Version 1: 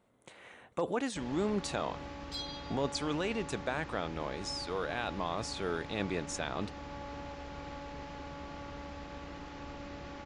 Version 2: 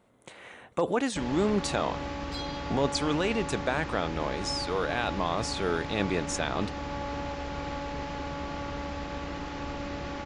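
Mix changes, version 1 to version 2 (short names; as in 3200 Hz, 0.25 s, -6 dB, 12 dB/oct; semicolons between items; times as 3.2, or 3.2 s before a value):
speech +6.0 dB; first sound +9.0 dB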